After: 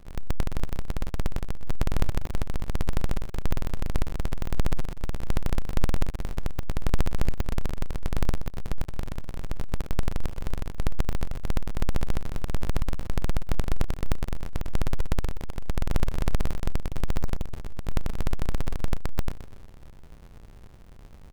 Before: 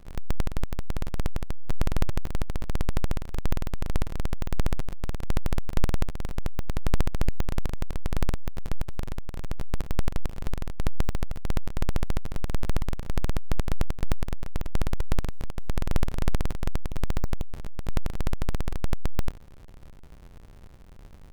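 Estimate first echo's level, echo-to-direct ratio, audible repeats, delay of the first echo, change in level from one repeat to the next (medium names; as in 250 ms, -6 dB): -12.0 dB, -11.0 dB, 3, 124 ms, -7.0 dB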